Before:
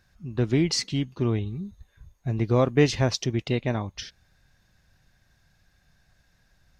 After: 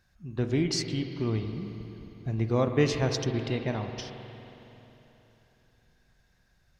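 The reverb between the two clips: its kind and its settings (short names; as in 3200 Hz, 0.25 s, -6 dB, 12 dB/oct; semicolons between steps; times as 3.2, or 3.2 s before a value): spring tank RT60 3.5 s, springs 45/53 ms, chirp 25 ms, DRR 5.5 dB; gain -4.5 dB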